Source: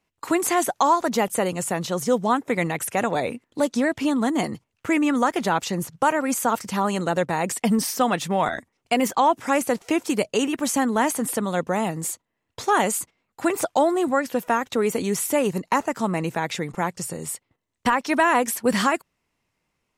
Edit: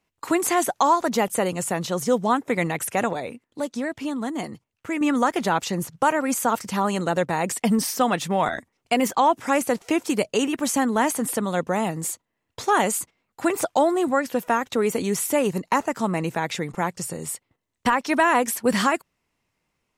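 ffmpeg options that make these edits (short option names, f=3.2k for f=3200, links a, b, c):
-filter_complex "[0:a]asplit=3[a][b][c];[a]atrim=end=3.132[d];[b]atrim=start=3.128:end=5.012,asetpts=PTS-STARTPTS,volume=-6dB[e];[c]atrim=start=5.008[f];[d][e]acrossfade=d=0.004:c1=hsin:c2=hsin[g];[g][f]acrossfade=d=0.004:c1=hsin:c2=hsin"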